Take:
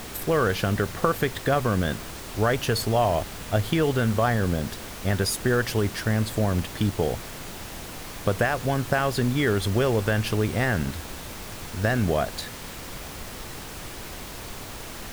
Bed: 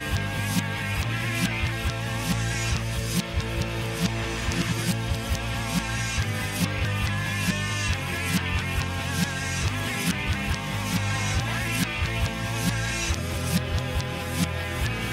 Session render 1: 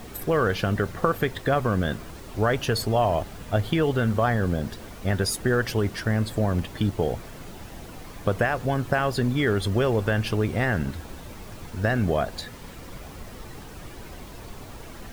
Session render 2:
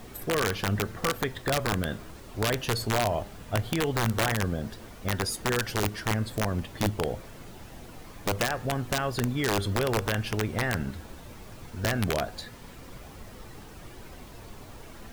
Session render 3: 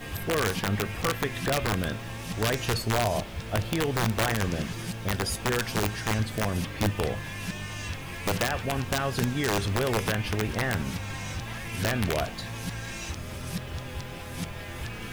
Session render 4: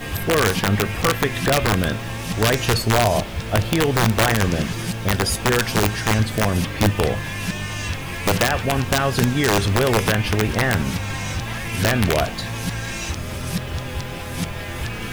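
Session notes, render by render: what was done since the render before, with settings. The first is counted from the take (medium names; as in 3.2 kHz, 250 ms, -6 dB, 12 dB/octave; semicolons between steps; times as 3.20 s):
noise reduction 9 dB, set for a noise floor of -38 dBFS
flange 0.78 Hz, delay 7.6 ms, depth 2.5 ms, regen +85%; integer overflow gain 18 dB
add bed -9.5 dB
trim +8.5 dB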